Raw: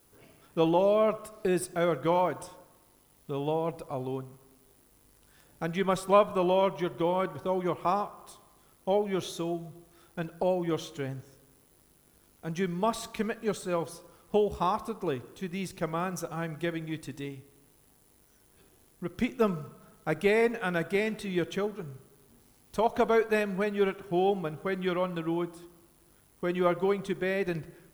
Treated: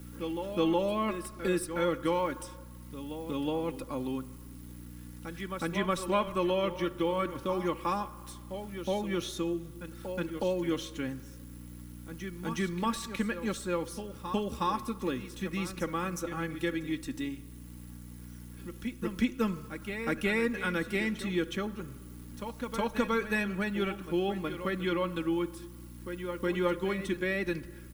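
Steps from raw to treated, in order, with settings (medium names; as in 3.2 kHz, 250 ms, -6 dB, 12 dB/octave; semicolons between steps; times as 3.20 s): peaking EQ 690 Hz -14 dB 0.59 oct; comb 3.6 ms, depth 62%; reverse echo 367 ms -12 dB; hum 60 Hz, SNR 17 dB; three bands compressed up and down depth 40%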